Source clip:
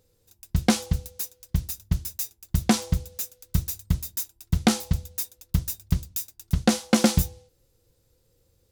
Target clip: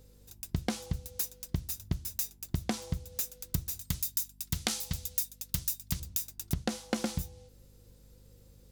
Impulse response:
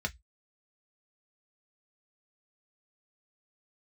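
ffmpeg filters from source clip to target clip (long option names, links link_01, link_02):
-filter_complex "[0:a]asettb=1/sr,asplit=3[link_01][link_02][link_03];[link_01]atrim=end=3.814[link_04];[link_02]atrim=start=3.81:end=6,asetpts=PTS-STARTPTS,afade=type=in:duration=0.004:curve=qsin,afade=type=out:start_time=2.186:duration=0.004:curve=qsin,tiltshelf=frequency=1400:gain=-7.5[link_05];[link_03]atrim=start=5.996[link_06];[link_04][link_05]acrossfade=duration=0.004:curve1=hsin:curve2=qsin[link_07];[link_07][link_06]acrossfade=duration=0.004:curve1=qsin:curve2=hsin,acompressor=threshold=-33dB:ratio=12,aeval=exprs='val(0)+0.000794*(sin(2*PI*50*n/s)+sin(2*PI*2*50*n/s)/2+sin(2*PI*3*50*n/s)/3+sin(2*PI*4*50*n/s)/4+sin(2*PI*5*50*n/s)/5)':channel_layout=same,volume=4.5dB"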